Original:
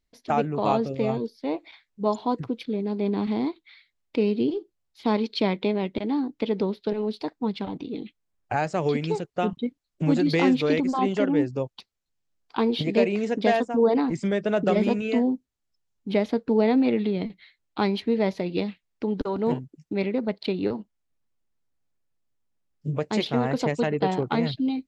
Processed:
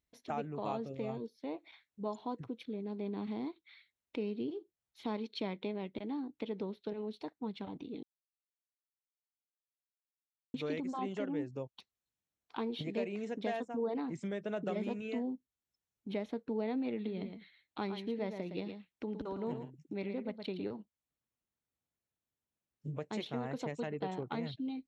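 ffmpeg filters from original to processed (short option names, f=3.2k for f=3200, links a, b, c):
-filter_complex "[0:a]asettb=1/sr,asplit=3[a][b][c];[a]atrim=end=16.944[d];[b]atrim=start=16.94:end=20.63,asetpts=PTS-STARTPTS,afade=t=in:d=0.004:c=qsin,afade=t=out:st=3.686:d=0.004:c=qsin,aecho=1:1:113:0.376,atrim=end_sample=162729[e];[c]atrim=start=20.626[f];[d][e]acrossfade=d=0.004:c1=hsin:c2=qsin[g];[g][f]acrossfade=d=0.004:c1=qsin:c2=hsin,asplit=3[h][i][j];[h]atrim=end=8.03,asetpts=PTS-STARTPTS,afade=t=out:st=8.026:d=0.004:c=hsin[k];[i]atrim=start=8.03:end=10.54,asetpts=PTS-STARTPTS,volume=0[l];[j]atrim=start=10.54,asetpts=PTS-STARTPTS,afade=t=in:d=0.004:c=hsin[m];[k][l][m]concat=n=3:v=0:a=1,highpass=50,bandreject=f=4.8k:w=6.4,acompressor=threshold=-43dB:ratio=1.5,volume=-6dB"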